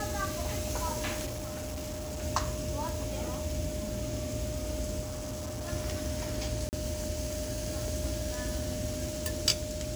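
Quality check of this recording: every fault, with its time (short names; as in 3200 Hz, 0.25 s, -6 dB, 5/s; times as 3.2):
tone 610 Hz -38 dBFS
1.25–2.23 clipped -34 dBFS
5.01–5.69 clipped -34 dBFS
6.69–6.73 gap 39 ms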